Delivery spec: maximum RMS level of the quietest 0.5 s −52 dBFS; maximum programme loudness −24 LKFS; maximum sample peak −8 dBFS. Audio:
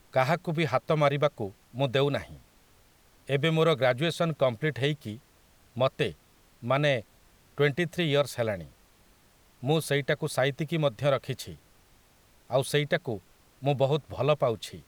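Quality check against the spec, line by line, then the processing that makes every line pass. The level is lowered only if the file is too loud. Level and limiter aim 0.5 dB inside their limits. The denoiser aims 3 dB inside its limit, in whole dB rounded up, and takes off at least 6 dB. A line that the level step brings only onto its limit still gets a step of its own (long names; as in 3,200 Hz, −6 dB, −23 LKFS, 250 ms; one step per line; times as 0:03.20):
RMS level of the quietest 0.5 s −61 dBFS: in spec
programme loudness −28.0 LKFS: in spec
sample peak −9.0 dBFS: in spec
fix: no processing needed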